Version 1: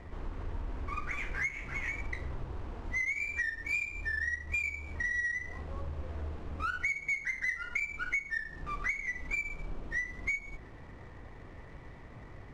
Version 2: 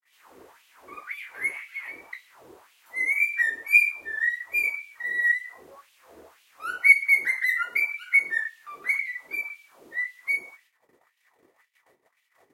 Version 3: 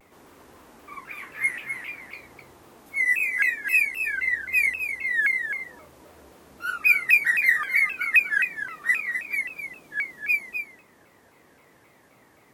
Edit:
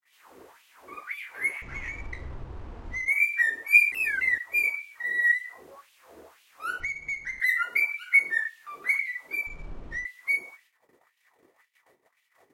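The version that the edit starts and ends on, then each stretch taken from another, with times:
2
1.62–3.08 s: from 1
3.92–4.38 s: from 3
6.80–7.40 s: from 1
9.47–10.05 s: from 1

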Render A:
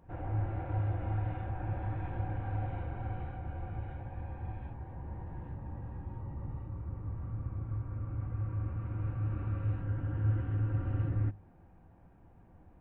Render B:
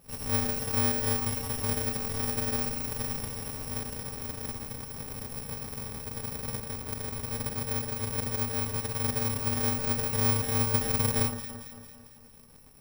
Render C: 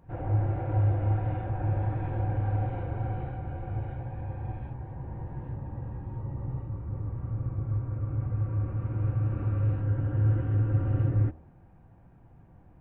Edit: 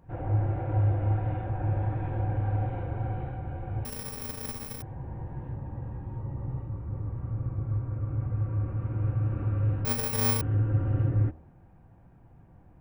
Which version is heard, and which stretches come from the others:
C
3.85–4.82 s: from B
9.85–10.41 s: from B
not used: A

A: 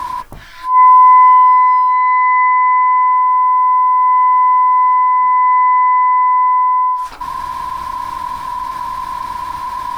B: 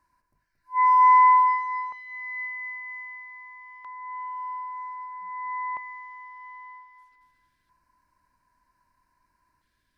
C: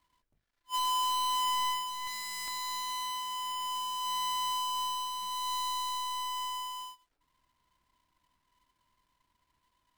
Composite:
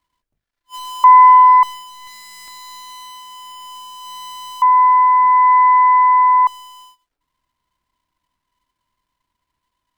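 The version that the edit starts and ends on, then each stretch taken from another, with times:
C
1.04–1.63 s: from A
4.62–6.47 s: from A
not used: B

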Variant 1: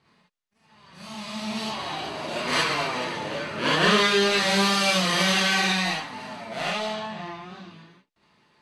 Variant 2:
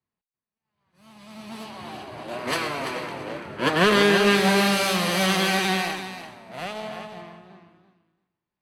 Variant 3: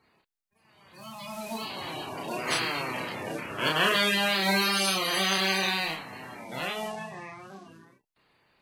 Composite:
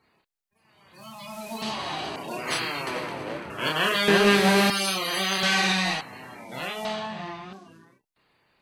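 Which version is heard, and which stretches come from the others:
3
1.62–2.16 s: from 1
2.87–3.50 s: from 2
4.08–4.70 s: from 2
5.43–6.01 s: from 1
6.85–7.53 s: from 1

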